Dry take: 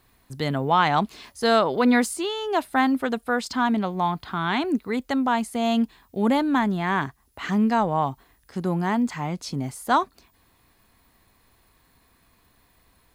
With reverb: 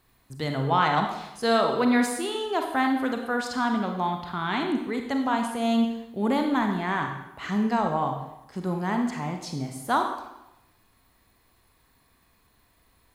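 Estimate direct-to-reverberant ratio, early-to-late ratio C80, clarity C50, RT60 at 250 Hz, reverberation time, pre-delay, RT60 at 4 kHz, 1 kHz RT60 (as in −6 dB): 3.5 dB, 8.0 dB, 5.5 dB, 0.95 s, 0.90 s, 31 ms, 0.85 s, 0.95 s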